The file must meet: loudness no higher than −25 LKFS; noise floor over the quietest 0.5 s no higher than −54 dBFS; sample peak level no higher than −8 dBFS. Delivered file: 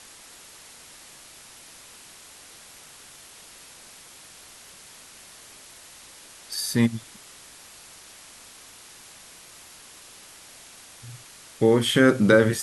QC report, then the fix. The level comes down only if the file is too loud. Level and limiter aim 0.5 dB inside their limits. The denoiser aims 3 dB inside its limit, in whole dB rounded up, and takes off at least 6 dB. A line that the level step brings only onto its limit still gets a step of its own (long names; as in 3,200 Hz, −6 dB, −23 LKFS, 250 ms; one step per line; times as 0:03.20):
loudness −21.0 LKFS: out of spec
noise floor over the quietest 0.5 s −48 dBFS: out of spec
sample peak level −4.0 dBFS: out of spec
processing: broadband denoise 6 dB, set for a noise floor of −48 dBFS
level −4.5 dB